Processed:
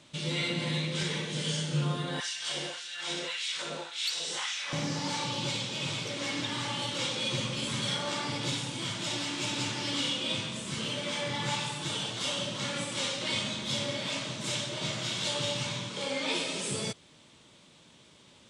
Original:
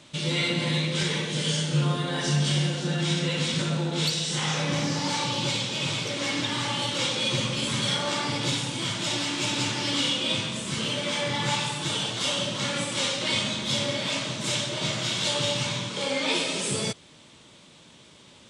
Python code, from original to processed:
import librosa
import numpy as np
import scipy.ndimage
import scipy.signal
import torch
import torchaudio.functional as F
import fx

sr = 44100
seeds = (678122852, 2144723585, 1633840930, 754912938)

y = fx.filter_lfo_highpass(x, sr, shape='sine', hz=1.8, low_hz=390.0, high_hz=2500.0, q=1.2, at=(2.2, 4.73))
y = F.gain(torch.from_numpy(y), -5.5).numpy()